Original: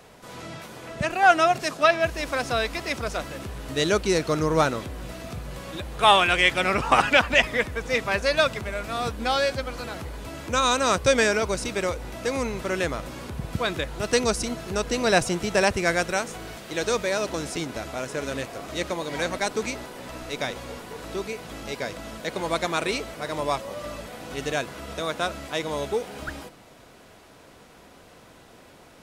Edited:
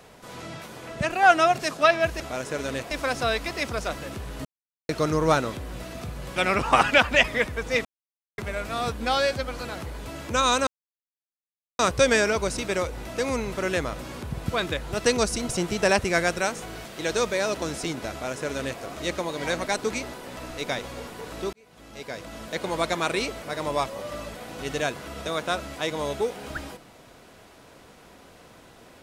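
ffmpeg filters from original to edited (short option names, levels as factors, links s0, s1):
-filter_complex "[0:a]asplit=11[s0][s1][s2][s3][s4][s5][s6][s7][s8][s9][s10];[s0]atrim=end=2.202[s11];[s1]atrim=start=17.828:end=18.542[s12];[s2]atrim=start=2.198:end=3.74,asetpts=PTS-STARTPTS,afade=t=out:st=1.538:d=0.004:c=hsin[s13];[s3]atrim=start=3.74:end=4.18,asetpts=PTS-STARTPTS,volume=0[s14];[s4]atrim=start=4.18:end=5.652,asetpts=PTS-STARTPTS,afade=t=in:d=0.004:c=hsin[s15];[s5]atrim=start=6.548:end=8.04,asetpts=PTS-STARTPTS,afade=t=out:st=1.488:d=0.004:c=hsin[s16];[s6]atrim=start=8.04:end=8.57,asetpts=PTS-STARTPTS,volume=0[s17];[s7]atrim=start=8.57:end=10.86,asetpts=PTS-STARTPTS,afade=t=in:d=0.004:c=hsin,afade=t=out:st=2.286:d=0.004:c=hsin,apad=pad_dur=1.12[s18];[s8]atrim=start=10.86:end=14.562,asetpts=PTS-STARTPTS,afade=t=in:d=0.004:c=hsin[s19];[s9]atrim=start=15.208:end=21.25,asetpts=PTS-STARTPTS,afade=t=out:st=6.038:d=0.004:c=hsin[s20];[s10]atrim=start=21.25,asetpts=PTS-STARTPTS,afade=t=in:d=1.01[s21];[s11][s12]acrossfade=d=0.004:c1=hsin:c2=hsin[s22];[s13][s14][s15]concat=n=3:v=0:a=1[s23];[s22][s23]acrossfade=d=0.004:c1=hsin:c2=hsin[s24];[s16][s17][s18][s19]concat=n=4:v=0:a=1[s25];[s24][s25]acrossfade=d=0.004:c1=hsin:c2=hsin[s26];[s20][s21]concat=n=2:v=0:a=1[s27];[s26][s27]acrossfade=d=0.004:c1=hsin:c2=hsin"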